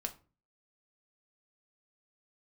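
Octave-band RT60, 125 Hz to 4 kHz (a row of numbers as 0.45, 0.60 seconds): 0.55, 0.50, 0.40, 0.35, 0.30, 0.25 seconds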